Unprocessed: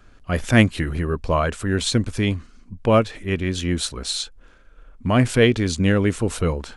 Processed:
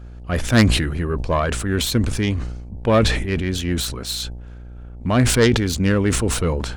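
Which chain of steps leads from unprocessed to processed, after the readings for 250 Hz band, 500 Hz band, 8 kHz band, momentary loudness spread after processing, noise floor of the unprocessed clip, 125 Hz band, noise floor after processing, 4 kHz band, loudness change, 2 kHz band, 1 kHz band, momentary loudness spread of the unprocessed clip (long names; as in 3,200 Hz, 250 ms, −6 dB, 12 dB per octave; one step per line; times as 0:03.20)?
+1.0 dB, 0.0 dB, +4.5 dB, 14 LU, −50 dBFS, +1.5 dB, −37 dBFS, +2.5 dB, +1.5 dB, +0.5 dB, +0.5 dB, 10 LU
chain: phase distortion by the signal itself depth 0.13 ms
hum with harmonics 60 Hz, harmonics 15, −37 dBFS −9 dB per octave
level that may fall only so fast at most 45 dB per second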